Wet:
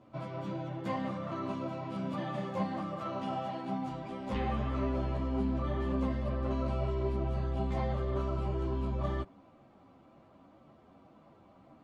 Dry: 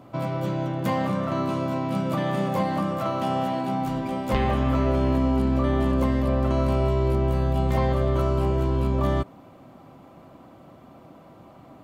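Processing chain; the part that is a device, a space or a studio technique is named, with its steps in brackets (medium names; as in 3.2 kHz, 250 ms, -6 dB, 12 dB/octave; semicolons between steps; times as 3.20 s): string-machine ensemble chorus (three-phase chorus; low-pass 6.2 kHz 12 dB/octave); trim -7.5 dB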